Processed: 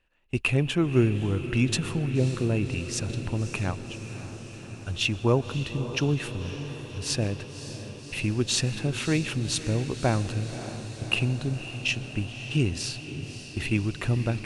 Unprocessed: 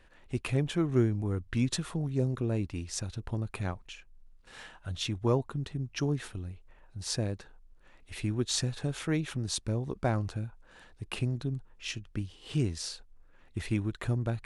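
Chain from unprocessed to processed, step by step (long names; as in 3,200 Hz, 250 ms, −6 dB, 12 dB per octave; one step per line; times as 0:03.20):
noise gate −43 dBFS, range −18 dB
parametric band 2,700 Hz +12.5 dB 0.23 octaves
feedback delay with all-pass diffusion 569 ms, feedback 70%, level −11.5 dB
convolution reverb RT60 1.4 s, pre-delay 114 ms, DRR 19.5 dB
level +4.5 dB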